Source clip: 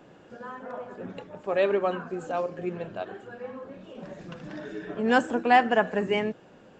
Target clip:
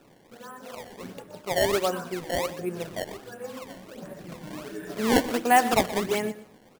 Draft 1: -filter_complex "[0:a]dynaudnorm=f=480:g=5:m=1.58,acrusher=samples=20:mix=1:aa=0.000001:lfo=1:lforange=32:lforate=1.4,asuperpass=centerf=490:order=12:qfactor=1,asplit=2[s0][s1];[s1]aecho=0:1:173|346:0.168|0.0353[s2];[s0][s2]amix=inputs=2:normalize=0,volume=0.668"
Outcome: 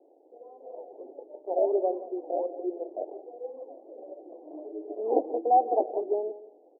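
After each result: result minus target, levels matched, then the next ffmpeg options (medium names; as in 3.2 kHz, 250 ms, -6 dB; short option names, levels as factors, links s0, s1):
echo 51 ms late; 500 Hz band +3.0 dB
-filter_complex "[0:a]dynaudnorm=f=480:g=5:m=1.58,acrusher=samples=20:mix=1:aa=0.000001:lfo=1:lforange=32:lforate=1.4,asuperpass=centerf=490:order=12:qfactor=1,asplit=2[s0][s1];[s1]aecho=0:1:122|244:0.168|0.0353[s2];[s0][s2]amix=inputs=2:normalize=0,volume=0.668"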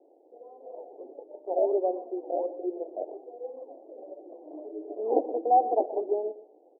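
500 Hz band +3.0 dB
-filter_complex "[0:a]dynaudnorm=f=480:g=5:m=1.58,acrusher=samples=20:mix=1:aa=0.000001:lfo=1:lforange=32:lforate=1.4,asplit=2[s0][s1];[s1]aecho=0:1:122|244:0.168|0.0353[s2];[s0][s2]amix=inputs=2:normalize=0,volume=0.668"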